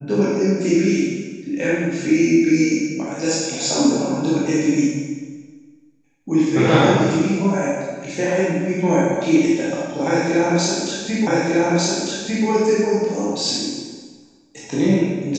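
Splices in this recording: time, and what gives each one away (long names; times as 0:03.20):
0:11.27: the same again, the last 1.2 s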